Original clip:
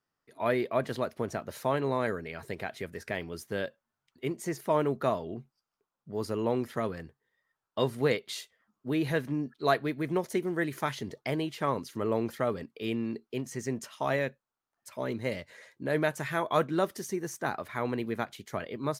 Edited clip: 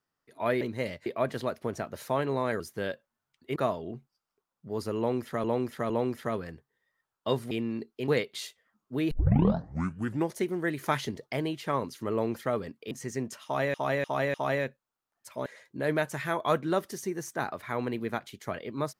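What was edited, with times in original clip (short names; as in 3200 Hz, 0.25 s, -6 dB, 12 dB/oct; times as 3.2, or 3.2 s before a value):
2.15–3.34 cut
4.3–4.99 cut
6.41–6.87 loop, 3 plays
9.05 tape start 1.25 s
10.8–11.05 gain +3.5 dB
12.85–13.42 move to 8.02
13.95–14.25 loop, 4 plays
15.07–15.52 move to 0.61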